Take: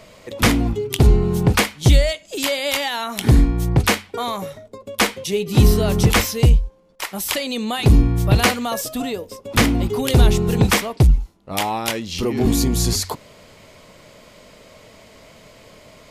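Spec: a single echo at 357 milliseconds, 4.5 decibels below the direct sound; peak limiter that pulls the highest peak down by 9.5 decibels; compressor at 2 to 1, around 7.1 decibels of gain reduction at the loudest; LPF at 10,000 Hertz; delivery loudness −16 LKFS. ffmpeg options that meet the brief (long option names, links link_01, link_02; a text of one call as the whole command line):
ffmpeg -i in.wav -af "lowpass=10000,acompressor=threshold=-21dB:ratio=2,alimiter=limit=-16dB:level=0:latency=1,aecho=1:1:357:0.596,volume=8.5dB" out.wav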